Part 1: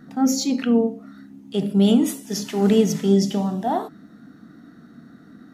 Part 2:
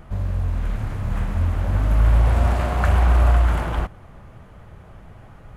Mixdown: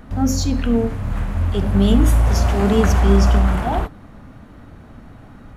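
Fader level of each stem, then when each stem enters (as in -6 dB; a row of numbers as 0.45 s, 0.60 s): -0.5 dB, +1.0 dB; 0.00 s, 0.00 s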